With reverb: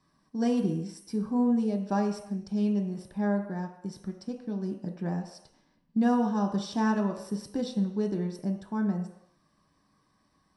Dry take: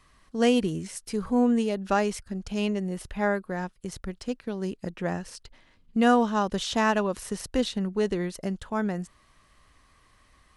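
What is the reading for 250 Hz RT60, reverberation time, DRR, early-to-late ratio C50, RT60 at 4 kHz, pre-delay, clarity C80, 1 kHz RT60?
0.60 s, 0.80 s, 2.0 dB, 7.5 dB, 0.80 s, 3 ms, 10.0 dB, 0.80 s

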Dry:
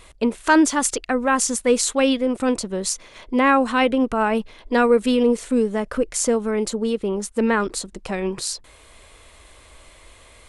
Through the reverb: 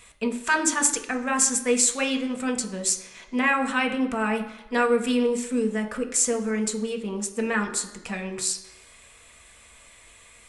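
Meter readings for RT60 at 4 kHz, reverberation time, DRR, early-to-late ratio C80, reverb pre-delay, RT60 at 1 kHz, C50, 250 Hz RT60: 1.0 s, 0.95 s, 3.5 dB, 13.5 dB, 3 ms, 1.0 s, 11.0 dB, 0.90 s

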